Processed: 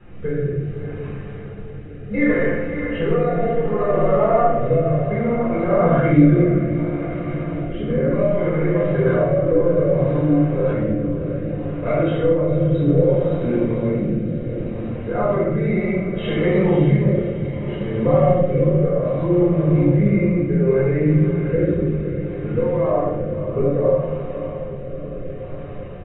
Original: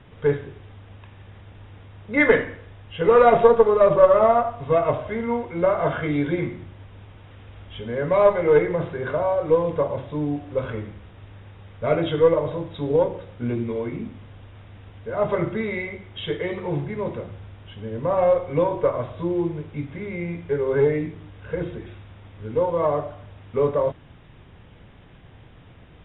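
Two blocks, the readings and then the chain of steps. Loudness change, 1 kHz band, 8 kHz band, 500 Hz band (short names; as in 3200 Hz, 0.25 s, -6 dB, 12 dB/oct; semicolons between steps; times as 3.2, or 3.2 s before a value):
+3.0 dB, -1.0 dB, n/a, +1.5 dB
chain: limiter -10.5 dBFS, peak gain reduction 9 dB; compressor, threshold -24 dBFS, peak gain reduction 9 dB; bell 940 Hz -8.5 dB 0.21 oct; diffused feedback echo 0.584 s, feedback 64%, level -9 dB; flange 0.37 Hz, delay 3.4 ms, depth 6.5 ms, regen -69%; shoebox room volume 380 m³, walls mixed, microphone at 4 m; rotary speaker horn 0.65 Hz; high shelf 2100 Hz -8.5 dB; notch 3400 Hz, Q 6; comb 5.7 ms, depth 34%; gain +5 dB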